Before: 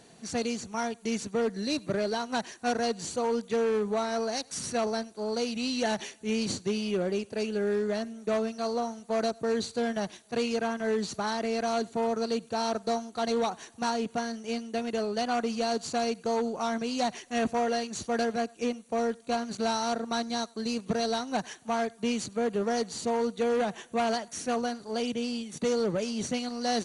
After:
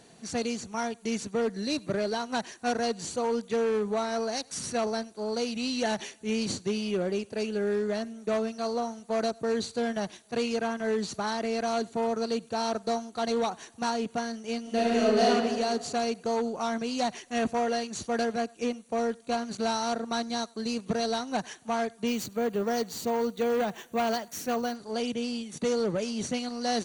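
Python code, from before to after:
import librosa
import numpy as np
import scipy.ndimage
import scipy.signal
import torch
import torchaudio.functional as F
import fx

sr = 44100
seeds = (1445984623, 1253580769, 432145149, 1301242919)

y = fx.reverb_throw(x, sr, start_s=14.61, length_s=0.67, rt60_s=1.6, drr_db=-7.0)
y = fx.resample_bad(y, sr, factor=2, down='none', up='hold', at=(22.07, 24.76))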